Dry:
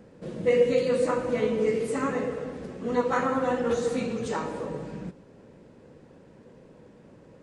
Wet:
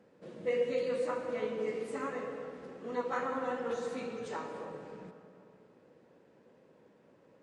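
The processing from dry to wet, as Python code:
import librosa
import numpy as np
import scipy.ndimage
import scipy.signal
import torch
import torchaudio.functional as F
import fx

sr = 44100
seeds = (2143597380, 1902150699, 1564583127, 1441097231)

y = fx.highpass(x, sr, hz=380.0, slope=6)
y = fx.high_shelf(y, sr, hz=6400.0, db=-8.5)
y = fx.rev_freeverb(y, sr, rt60_s=2.8, hf_ratio=0.45, predelay_ms=90, drr_db=9.5)
y = y * 10.0 ** (-7.5 / 20.0)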